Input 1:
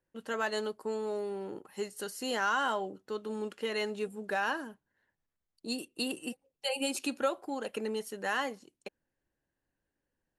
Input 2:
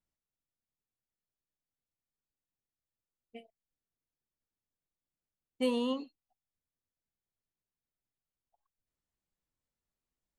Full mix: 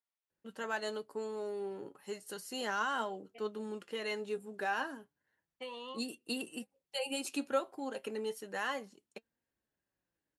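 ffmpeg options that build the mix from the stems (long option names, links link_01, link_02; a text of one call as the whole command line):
ffmpeg -i stem1.wav -i stem2.wav -filter_complex "[0:a]adelay=300,volume=0dB[link_01];[1:a]acrossover=split=530 4300:gain=0.0891 1 0.251[link_02][link_03][link_04];[link_02][link_03][link_04]amix=inputs=3:normalize=0,acompressor=threshold=-39dB:ratio=3,volume=2.5dB[link_05];[link_01][link_05]amix=inputs=2:normalize=0,flanger=delay=4.3:depth=3.3:regen=65:speed=0.32:shape=sinusoidal,highpass=50" out.wav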